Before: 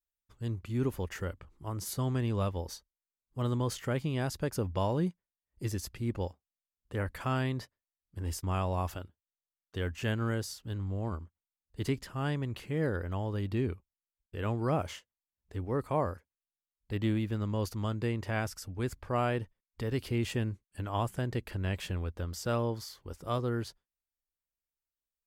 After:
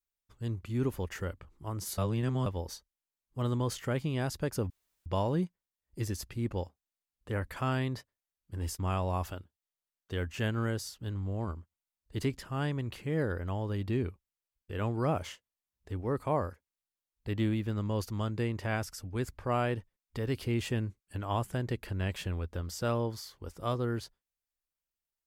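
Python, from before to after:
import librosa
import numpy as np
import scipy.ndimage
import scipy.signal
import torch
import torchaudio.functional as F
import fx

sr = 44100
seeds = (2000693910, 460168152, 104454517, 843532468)

y = fx.edit(x, sr, fx.reverse_span(start_s=1.98, length_s=0.48),
    fx.insert_room_tone(at_s=4.7, length_s=0.36), tone=tone)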